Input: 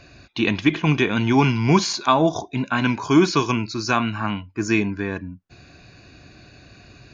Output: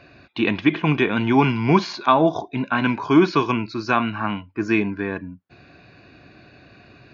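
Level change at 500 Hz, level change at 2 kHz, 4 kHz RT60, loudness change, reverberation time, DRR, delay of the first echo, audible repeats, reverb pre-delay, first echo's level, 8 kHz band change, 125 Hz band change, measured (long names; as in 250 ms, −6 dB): +1.0 dB, 0.0 dB, no reverb audible, 0.0 dB, no reverb audible, no reverb audible, no echo audible, no echo audible, no reverb audible, no echo audible, can't be measured, −2.5 dB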